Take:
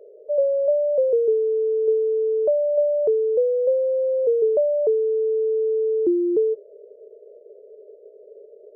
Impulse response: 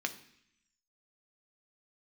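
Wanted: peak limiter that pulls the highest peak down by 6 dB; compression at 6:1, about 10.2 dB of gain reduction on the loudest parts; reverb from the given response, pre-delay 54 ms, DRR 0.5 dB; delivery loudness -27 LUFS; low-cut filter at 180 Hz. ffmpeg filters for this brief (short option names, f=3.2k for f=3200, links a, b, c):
-filter_complex "[0:a]highpass=180,acompressor=threshold=-27dB:ratio=6,alimiter=level_in=3dB:limit=-24dB:level=0:latency=1,volume=-3dB,asplit=2[a][b];[1:a]atrim=start_sample=2205,adelay=54[c];[b][c]afir=irnorm=-1:irlink=0,volume=-4dB[d];[a][d]amix=inputs=2:normalize=0,volume=2.5dB"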